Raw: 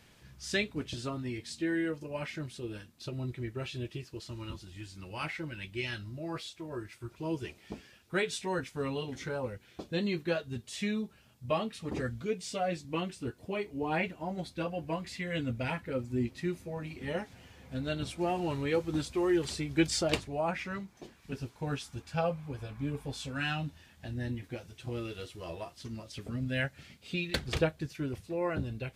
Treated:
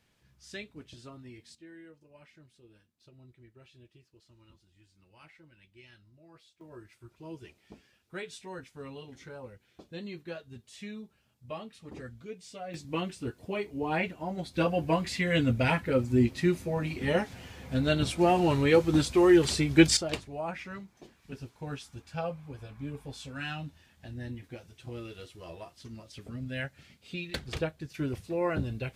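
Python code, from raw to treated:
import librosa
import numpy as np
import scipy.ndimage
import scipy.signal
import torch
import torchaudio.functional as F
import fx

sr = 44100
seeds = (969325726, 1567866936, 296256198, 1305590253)

y = fx.gain(x, sr, db=fx.steps((0.0, -11.0), (1.55, -19.0), (6.61, -9.0), (12.74, 1.5), (14.54, 8.0), (19.97, -3.5), (27.94, 3.0)))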